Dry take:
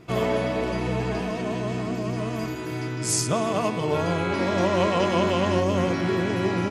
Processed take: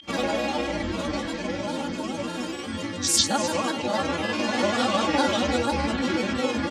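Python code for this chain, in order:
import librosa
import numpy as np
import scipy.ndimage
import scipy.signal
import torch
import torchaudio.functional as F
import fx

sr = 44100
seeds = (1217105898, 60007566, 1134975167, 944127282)

y = scipy.signal.sosfilt(scipy.signal.butter(2, 65.0, 'highpass', fs=sr, output='sos'), x)
y = fx.high_shelf(y, sr, hz=3400.0, db=11.5)
y = y + 10.0 ** (-14.5 / 20.0) * np.pad(y, (int(312 * sr / 1000.0), 0))[:len(y)]
y = fx.granulator(y, sr, seeds[0], grain_ms=100.0, per_s=20.0, spray_ms=18.0, spread_st=7)
y = y + 10.0 ** (-33.0 / 20.0) * np.sin(2.0 * np.pi * 3200.0 * np.arange(len(y)) / sr)
y = scipy.signal.sosfilt(scipy.signal.butter(2, 7500.0, 'lowpass', fs=sr, output='sos'), y)
y = y + 0.97 * np.pad(y, (int(3.6 * sr / 1000.0), 0))[:len(y)]
y = y * librosa.db_to_amplitude(-3.5)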